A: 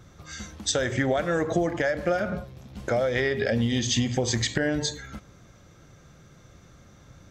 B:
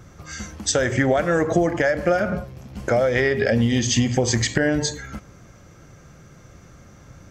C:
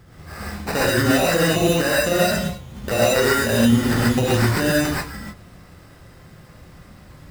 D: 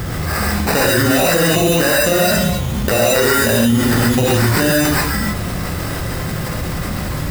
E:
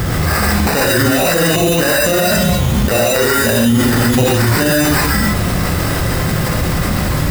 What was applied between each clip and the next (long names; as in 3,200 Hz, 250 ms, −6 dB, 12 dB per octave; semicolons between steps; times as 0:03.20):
parametric band 3,700 Hz −8.5 dB 0.3 octaves; level +5.5 dB
sample-rate reduction 3,300 Hz, jitter 0%; reverb whose tail is shaped and stops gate 160 ms rising, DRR −6.5 dB; level −4.5 dB
high-shelf EQ 9,500 Hz +7.5 dB; envelope flattener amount 70%
brickwall limiter −10 dBFS, peak gain reduction 8.5 dB; level +6 dB